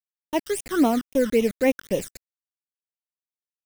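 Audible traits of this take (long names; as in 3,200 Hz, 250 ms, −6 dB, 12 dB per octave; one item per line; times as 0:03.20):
a quantiser's noise floor 6 bits, dither none
phaser sweep stages 12, 3.7 Hz, lowest notch 740–1,500 Hz
Ogg Vorbis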